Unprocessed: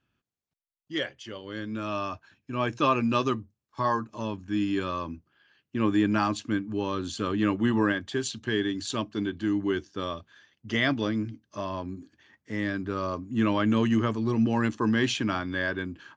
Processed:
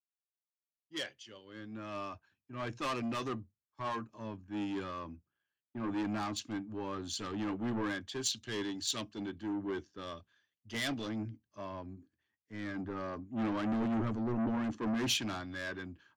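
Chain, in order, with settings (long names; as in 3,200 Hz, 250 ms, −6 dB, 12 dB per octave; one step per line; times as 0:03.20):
0:12.74–0:15.18: dynamic equaliser 250 Hz, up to +5 dB, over −36 dBFS, Q 0.88
soft clipping −27.5 dBFS, distortion −6 dB
multiband upward and downward expander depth 100%
level −5 dB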